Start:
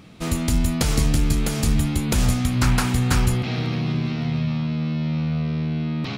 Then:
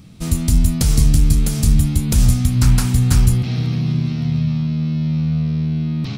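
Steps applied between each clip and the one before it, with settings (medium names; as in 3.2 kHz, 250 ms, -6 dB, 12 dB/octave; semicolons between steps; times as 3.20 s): tone controls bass +13 dB, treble +11 dB; band-stop 6.8 kHz, Q 22; trim -5.5 dB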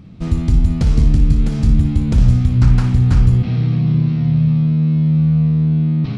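in parallel at -6.5 dB: saturation -14 dBFS, distortion -10 dB; on the sum: tape spacing loss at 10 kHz 27 dB; flutter echo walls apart 10 m, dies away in 0.37 s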